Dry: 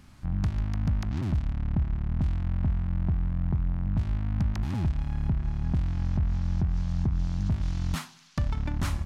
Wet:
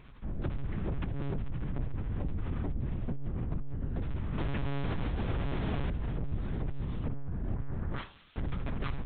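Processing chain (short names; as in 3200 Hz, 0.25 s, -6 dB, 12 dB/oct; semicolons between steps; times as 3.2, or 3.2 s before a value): 4.38–5.9 half-waves squared off; 7.07–7.98 steep low-pass 1800 Hz; overloaded stage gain 30.5 dB; monotone LPC vocoder at 8 kHz 140 Hz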